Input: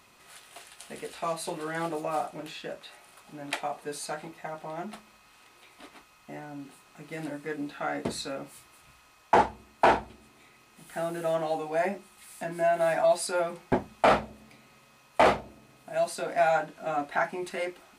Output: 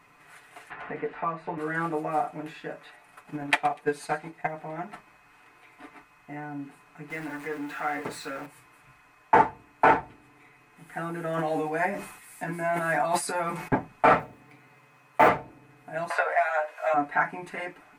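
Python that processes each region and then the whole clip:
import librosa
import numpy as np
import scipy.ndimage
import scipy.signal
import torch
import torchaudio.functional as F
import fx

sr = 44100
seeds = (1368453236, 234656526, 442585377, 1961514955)

y = fx.chain(x, sr, fx.lowpass(hz=2300.0, slope=12),
    fx.band_squash(depth_pct=70), at=(0.7, 1.58))
y = fx.chain(y, sr, fx.dynamic_eq(hz=3500.0, q=1.3, threshold_db=-53.0, ratio=4.0, max_db=5),
    fx.transient(attack_db=8, sustain_db=-5),
    fx.echo_wet_highpass(ms=122, feedback_pct=31, hz=3300.0, wet_db=-16.0), at=(2.86, 4.47))
y = fx.chain(y, sr, fx.zero_step(step_db=-36.0),
    fx.low_shelf(hz=440.0, db=-11.0), at=(7.1, 8.46))
y = fx.chain(y, sr, fx.high_shelf(hz=5500.0, db=9.0),
    fx.sustainer(db_per_s=63.0), at=(11.33, 13.68))
y = fx.chain(y, sr, fx.block_float(bits=5),
    fx.highpass(hz=62.0, slope=12), at=(14.19, 15.29))
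y = fx.chain(y, sr, fx.cheby1_highpass(hz=570.0, order=4),
    fx.doubler(ms=13.0, db=-6.5),
    fx.band_squash(depth_pct=100), at=(16.1, 16.94))
y = fx.high_shelf_res(y, sr, hz=2700.0, db=-9.0, q=1.5)
y = fx.notch(y, sr, hz=580.0, q=12.0)
y = y + 0.75 * np.pad(y, (int(6.8 * sr / 1000.0), 0))[:len(y)]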